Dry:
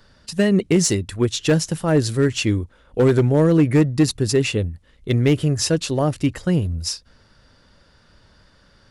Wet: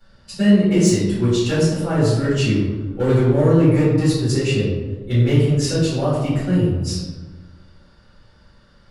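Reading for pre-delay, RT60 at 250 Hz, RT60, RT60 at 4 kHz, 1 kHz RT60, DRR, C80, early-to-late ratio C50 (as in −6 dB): 4 ms, 1.7 s, 1.4 s, 0.65 s, 1.3 s, −13.5 dB, 2.5 dB, 0.0 dB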